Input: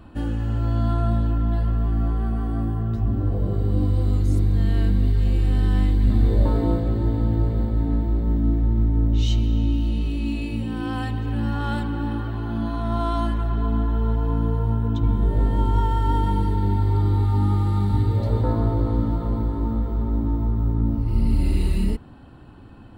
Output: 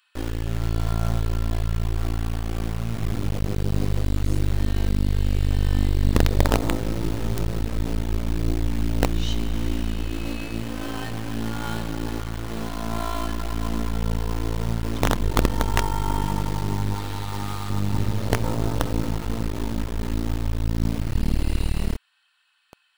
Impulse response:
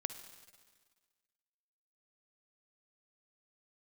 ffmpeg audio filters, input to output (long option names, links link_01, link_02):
-filter_complex "[0:a]asettb=1/sr,asplit=3[link_01][link_02][link_03];[link_01]atrim=end=16.944[link_04];[link_02]atrim=start=16.94:end=17.7,asetpts=PTS-STARTPTS,afade=type=in:duration=0.004:curve=qsin,afade=type=out:start_time=0.756:duration=0.004:curve=qsin,tiltshelf=frequency=760:gain=-7[link_05];[link_03]atrim=start=17.696[link_06];[link_04][link_05]acrossfade=duration=0.004:curve1=hsin:curve2=qsin[link_07];[link_07][link_06]acrossfade=duration=0.004:curve1=qsin:curve2=hsin,acrossover=split=1800[link_08][link_09];[link_08]acrusher=bits=3:dc=4:mix=0:aa=0.000001[link_10];[link_10][link_09]amix=inputs=2:normalize=0"